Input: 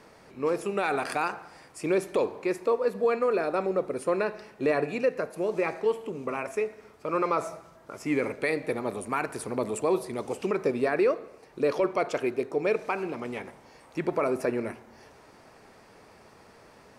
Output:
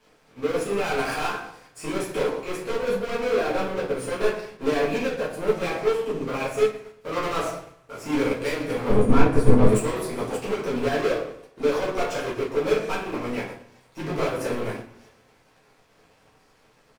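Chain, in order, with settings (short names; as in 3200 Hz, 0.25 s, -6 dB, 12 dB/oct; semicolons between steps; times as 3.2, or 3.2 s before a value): HPF 72 Hz 24 dB/oct; notch 620 Hz, Q 16; sample leveller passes 5; 8.88–9.67 tilt -3.5 dB/oct; feedback echo 0.119 s, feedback 53%, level -16 dB; reverb RT60 0.55 s, pre-delay 4 ms, DRR -7 dB; upward expander 1.5:1, over -29 dBFS; gain -9.5 dB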